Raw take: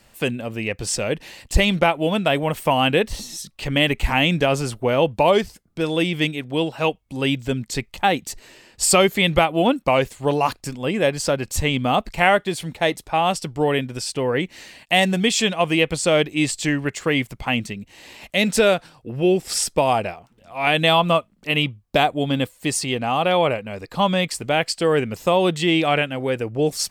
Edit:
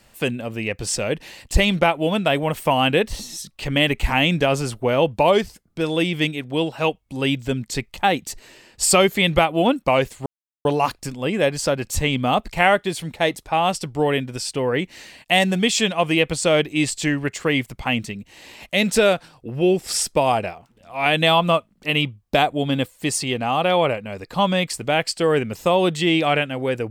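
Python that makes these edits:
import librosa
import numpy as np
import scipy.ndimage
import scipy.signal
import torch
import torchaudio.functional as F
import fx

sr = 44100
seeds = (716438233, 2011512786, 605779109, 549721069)

y = fx.edit(x, sr, fx.insert_silence(at_s=10.26, length_s=0.39), tone=tone)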